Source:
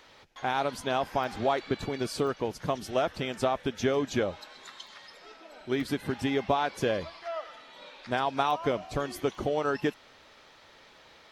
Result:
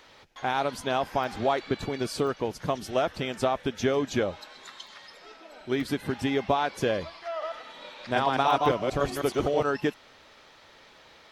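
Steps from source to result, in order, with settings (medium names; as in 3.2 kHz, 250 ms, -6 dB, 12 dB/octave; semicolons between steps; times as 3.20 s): 7.31–9.63 s: chunks repeated in reverse 106 ms, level -0.5 dB; trim +1.5 dB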